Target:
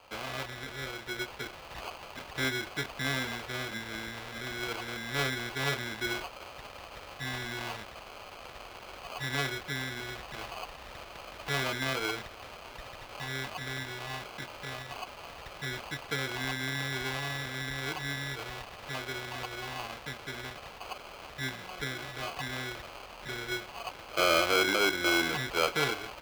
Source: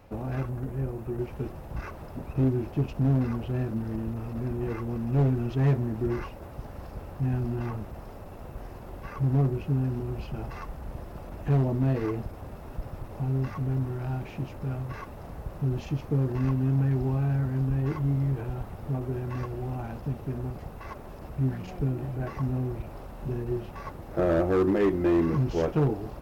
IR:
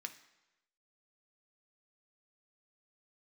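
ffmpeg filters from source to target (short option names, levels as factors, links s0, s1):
-filter_complex "[0:a]acrusher=samples=24:mix=1:aa=0.000001,acrossover=split=480 4100:gain=0.158 1 0.0891[s0][s1][s2];[s0][s1][s2]amix=inputs=3:normalize=0,crystalizer=i=3.5:c=0,asplit=2[s3][s4];[1:a]atrim=start_sample=2205[s5];[s4][s5]afir=irnorm=-1:irlink=0,volume=0.251[s6];[s3][s6]amix=inputs=2:normalize=0"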